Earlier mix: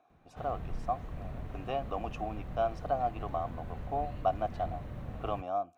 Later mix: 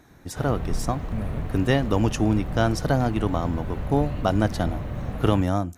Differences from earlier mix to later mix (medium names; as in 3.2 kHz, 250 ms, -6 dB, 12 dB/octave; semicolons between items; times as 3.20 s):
speech: remove vowel filter a; background +11.0 dB